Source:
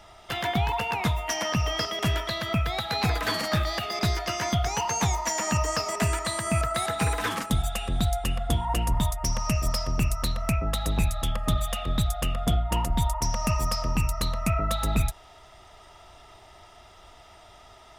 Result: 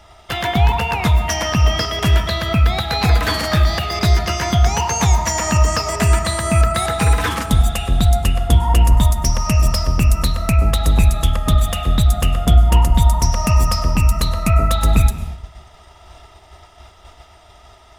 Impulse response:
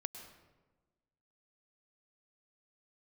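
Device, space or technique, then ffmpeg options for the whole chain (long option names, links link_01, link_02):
keyed gated reverb: -filter_complex "[0:a]equalizer=frequency=64:width=1.9:gain=9.5,asplit=3[link_01][link_02][link_03];[1:a]atrim=start_sample=2205[link_04];[link_02][link_04]afir=irnorm=-1:irlink=0[link_05];[link_03]apad=whole_len=792931[link_06];[link_05][link_06]sidechaingate=range=-13dB:threshold=-47dB:ratio=16:detection=peak,volume=3.5dB[link_07];[link_01][link_07]amix=inputs=2:normalize=0,volume=1dB"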